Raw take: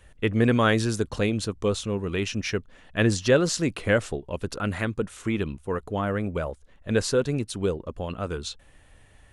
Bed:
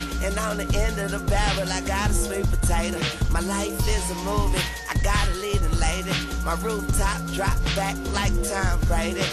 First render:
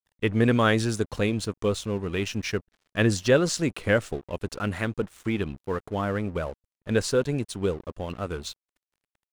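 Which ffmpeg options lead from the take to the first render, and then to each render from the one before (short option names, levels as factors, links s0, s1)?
-af "aeval=exprs='sgn(val(0))*max(abs(val(0))-0.00562,0)':c=same"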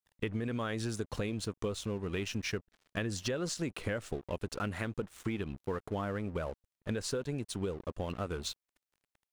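-af "alimiter=limit=0.168:level=0:latency=1:release=99,acompressor=threshold=0.0251:ratio=6"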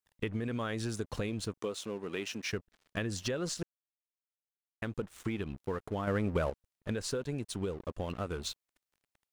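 -filter_complex "[0:a]asettb=1/sr,asplit=3[s0][s1][s2];[s0]atrim=end=1.584[s3];[s1]atrim=start=1.58:end=2.53,asetpts=PTS-STARTPTS,afade=t=in:d=0.004:c=qsin,afade=t=out:st=0.946:d=0.004:c=qsin,highpass=240[s4];[s2]atrim=start=2.526[s5];[s3][s4]acrossfade=d=0.004:c1=hsin:c2=qsin[s6];[s6][s5]acrossfade=d=0.004:c1=qsin:c2=hsin,asettb=1/sr,asplit=3[s7][s8][s9];[s7]atrim=end=6.074[s10];[s8]atrim=start=6.07:end=6.5,asetpts=PTS-STARTPTS,afade=t=in:d=0.004:c=qsin,afade=t=out:st=0.426:d=0.004:c=qsin,acontrast=37[s11];[s9]atrim=start=6.496[s12];[s10][s11]acrossfade=d=0.004:c1=hsin:c2=qsin[s13];[s13][s12]acrossfade=d=0.004:c1=qsin:c2=hsin,asplit=3[s14][s15][s16];[s14]atrim=end=3.63,asetpts=PTS-STARTPTS,afade=t=out:st=3.626:d=0.004:c=hsin[s17];[s15]atrim=start=3.63:end=4.82,asetpts=PTS-STARTPTS,volume=0[s18];[s16]atrim=start=4.82,asetpts=PTS-STARTPTS,afade=t=in:d=0.004:c=hsin[s19];[s17][s18][s19]concat=n=3:v=0:a=1"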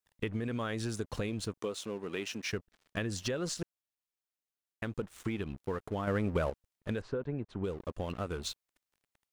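-filter_complex "[0:a]asplit=3[s0][s1][s2];[s0]afade=t=out:st=7:d=0.02[s3];[s1]lowpass=1600,afade=t=in:st=7:d=0.02,afade=t=out:st=7.63:d=0.02[s4];[s2]afade=t=in:st=7.63:d=0.02[s5];[s3][s4][s5]amix=inputs=3:normalize=0"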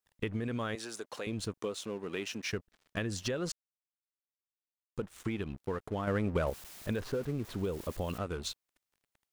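-filter_complex "[0:a]asettb=1/sr,asplit=3[s0][s1][s2];[s0]atrim=end=0.754[s3];[s1]atrim=start=0.75:end=1.27,asetpts=PTS-STARTPTS,afade=t=in:d=0.004:c=qsin,afade=t=out:st=0.516:d=0.004:c=qsin,highpass=460[s4];[s2]atrim=start=1.266[s5];[s3][s4]acrossfade=d=0.004:c1=hsin:c2=qsin[s6];[s6][s5]acrossfade=d=0.004:c1=qsin:c2=hsin,asettb=1/sr,asplit=3[s7][s8][s9];[s7]atrim=end=6.474[s10];[s8]atrim=start=6.47:end=8.18,asetpts=PTS-STARTPTS,afade=t=in:d=0.004:c=qsin,afade=t=out:st=1.706:d=0.004:c=qsin,aeval=exprs='val(0)+0.5*0.00794*sgn(val(0))':c=same[s11];[s9]atrim=start=8.176[s12];[s10][s11]acrossfade=d=0.004:c1=hsin:c2=qsin[s13];[s13][s12]acrossfade=d=0.004:c1=qsin:c2=hsin,asplit=3[s14][s15][s16];[s14]atrim=end=3.52,asetpts=PTS-STARTPTS,afade=t=out:st=3.516:d=0.004:c=hsin[s17];[s15]atrim=start=3.52:end=4.96,asetpts=PTS-STARTPTS,volume=0[s18];[s16]atrim=start=4.96,asetpts=PTS-STARTPTS,afade=t=in:d=0.004:c=hsin[s19];[s17][s18][s19]concat=n=3:v=0:a=1"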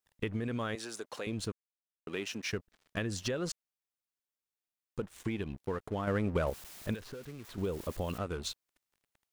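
-filter_complex "[0:a]asettb=1/sr,asplit=3[s0][s1][s2];[s0]atrim=end=5.154[s3];[s1]atrim=start=5.15:end=5.64,asetpts=PTS-STARTPTS,afade=t=in:d=0.004:c=qsin,afade=t=out:st=0.486:d=0.004:c=qsin,bandreject=f=1300:w=6.1[s4];[s2]atrim=start=5.636[s5];[s3][s4]acrossfade=d=0.004:c1=hsin:c2=qsin[s6];[s6][s5]acrossfade=d=0.004:c1=qsin:c2=hsin,asettb=1/sr,asplit=3[s7][s8][s9];[s7]atrim=end=6.944[s10];[s8]atrim=start=6.94:end=7.58,asetpts=PTS-STARTPTS,afade=t=in:d=0.004:c=qsin,afade=t=out:st=0.636:d=0.004:c=qsin,acrossover=split=820|1800[s11][s12][s13];[s11]acompressor=threshold=0.00562:ratio=4[s14];[s12]acompressor=threshold=0.00112:ratio=4[s15];[s13]acompressor=threshold=0.00316:ratio=4[s16];[s14][s15][s16]amix=inputs=3:normalize=0[s17];[s9]atrim=start=7.576[s18];[s10][s17]acrossfade=d=0.004:c1=hsin:c2=qsin[s19];[s19][s18]acrossfade=d=0.004:c1=qsin:c2=hsin,asplit=3[s20][s21][s22];[s20]atrim=end=1.52,asetpts=PTS-STARTPTS,afade=t=out:st=1.516:d=0.004:c=hsin[s23];[s21]atrim=start=1.52:end=2.07,asetpts=PTS-STARTPTS,volume=0[s24];[s22]atrim=start=2.07,asetpts=PTS-STARTPTS,afade=t=in:d=0.004:c=hsin[s25];[s23][s24][s25]concat=n=3:v=0:a=1"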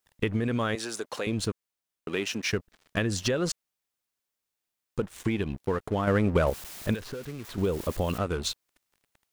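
-af "volume=2.37"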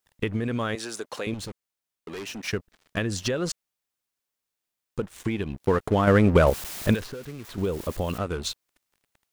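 -filter_complex "[0:a]asettb=1/sr,asplit=3[s0][s1][s2];[s0]atrim=end=1.344[s3];[s1]atrim=start=1.34:end=2.48,asetpts=PTS-STARTPTS,afade=t=in:d=0.004:c=qsin,afade=t=out:st=1.136:d=0.004:c=qsin,volume=44.7,asoftclip=hard,volume=0.0224[s4];[s2]atrim=start=2.476[s5];[s3][s4]acrossfade=d=0.004:c1=hsin:c2=qsin[s6];[s6][s5]acrossfade=d=0.004:c1=qsin:c2=hsin,asplit=3[s7][s8][s9];[s7]afade=t=out:st=5.6:d=0.02[s10];[s8]acontrast=58,afade=t=in:st=5.6:d=0.02,afade=t=out:st=7.05:d=0.02[s11];[s9]afade=t=in:st=7.05:d=0.02[s12];[s10][s11][s12]amix=inputs=3:normalize=0"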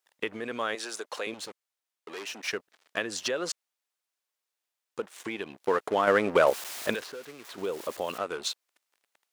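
-af "highpass=460,highshelf=f=11000:g=-5.5"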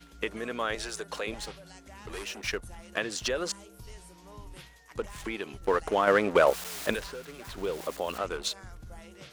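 -filter_complex "[1:a]volume=0.0631[s0];[0:a][s0]amix=inputs=2:normalize=0"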